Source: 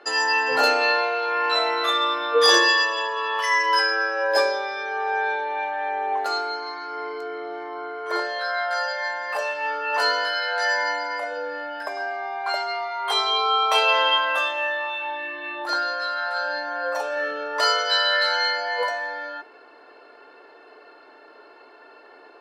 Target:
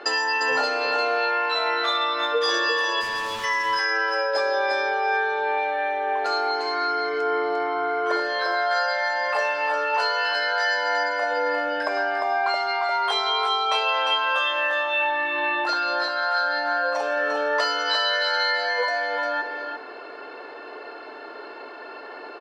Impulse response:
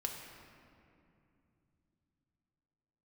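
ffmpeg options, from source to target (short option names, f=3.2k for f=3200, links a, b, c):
-filter_complex "[0:a]lowpass=6.3k,acompressor=threshold=-31dB:ratio=6,asplit=3[a][b][c];[a]afade=t=out:st=3:d=0.02[d];[b]asoftclip=type=hard:threshold=-39.5dB,afade=t=in:st=3:d=0.02,afade=t=out:st=3.43:d=0.02[e];[c]afade=t=in:st=3.43:d=0.02[f];[d][e][f]amix=inputs=3:normalize=0,aecho=1:1:350:0.501,volume=9dB"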